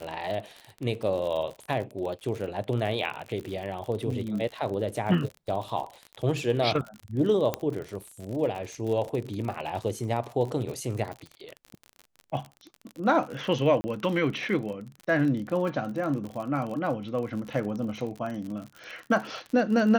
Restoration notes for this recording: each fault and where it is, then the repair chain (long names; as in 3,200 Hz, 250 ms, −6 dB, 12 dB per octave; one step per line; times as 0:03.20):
surface crackle 45 per second −33 dBFS
0:07.54: click −12 dBFS
0:13.81–0:13.84: drop-out 30 ms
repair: click removal
repair the gap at 0:13.81, 30 ms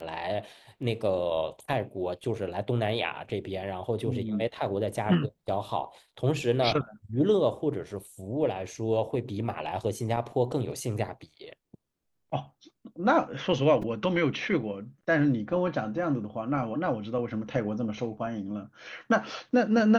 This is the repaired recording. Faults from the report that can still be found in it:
none of them is left